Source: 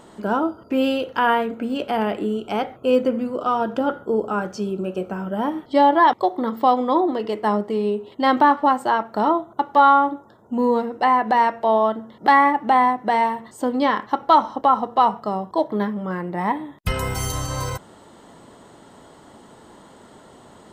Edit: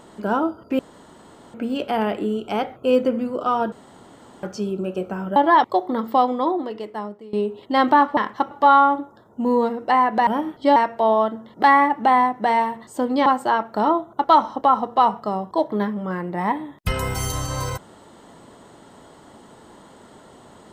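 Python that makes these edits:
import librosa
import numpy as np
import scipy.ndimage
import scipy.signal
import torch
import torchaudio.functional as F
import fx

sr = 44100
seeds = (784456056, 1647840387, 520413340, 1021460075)

y = fx.edit(x, sr, fx.room_tone_fill(start_s=0.79, length_s=0.75),
    fx.room_tone_fill(start_s=3.72, length_s=0.71),
    fx.move(start_s=5.36, length_s=0.49, to_s=11.4),
    fx.fade_out_to(start_s=6.58, length_s=1.24, floor_db=-21.0),
    fx.swap(start_s=8.66, length_s=0.98, other_s=13.9, other_length_s=0.34), tone=tone)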